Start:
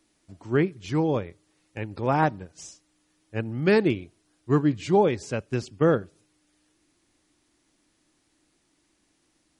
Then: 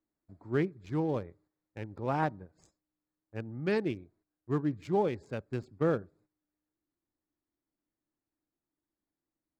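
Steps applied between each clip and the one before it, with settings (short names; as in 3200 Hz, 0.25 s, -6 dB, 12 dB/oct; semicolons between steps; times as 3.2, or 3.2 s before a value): Wiener smoothing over 15 samples; gate -57 dBFS, range -11 dB; vocal rider 2 s; gain -7.5 dB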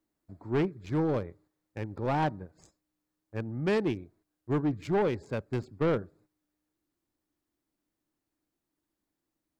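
soft clip -27 dBFS, distortion -12 dB; gain +5.5 dB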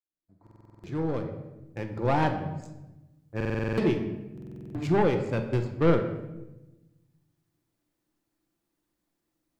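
opening faded in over 2.03 s; shoebox room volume 470 m³, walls mixed, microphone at 0.79 m; stuck buffer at 0.42/3.36/4.33, samples 2048, times 8; gain +3 dB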